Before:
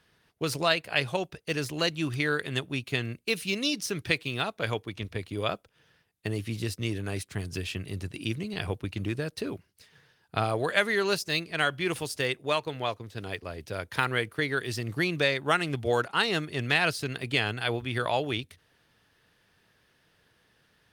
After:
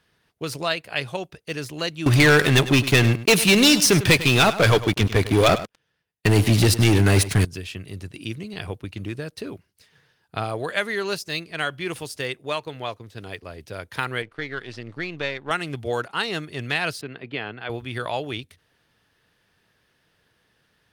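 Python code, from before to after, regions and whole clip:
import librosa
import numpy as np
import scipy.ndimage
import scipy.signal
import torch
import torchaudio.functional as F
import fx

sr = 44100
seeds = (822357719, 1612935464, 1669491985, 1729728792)

y = fx.chain(x, sr, fx.leveller(passes=5),
    fx.echo_single(ms=101, db=-14.5), at=(2.06, 7.45))
y = fx.chain(y, sr, fx.halfwave_gain(db=-7.0),
    fx.lowpass(hz=4200.0, slope=12),
    fx.low_shelf(hz=150.0, db=-6.5), at=(14.22, 15.51))
y = fx.chain(y, sr, fx.highpass(hz=170.0, slope=12),
    fx.air_absorb(metres=350.0), at=(17.01, 17.7))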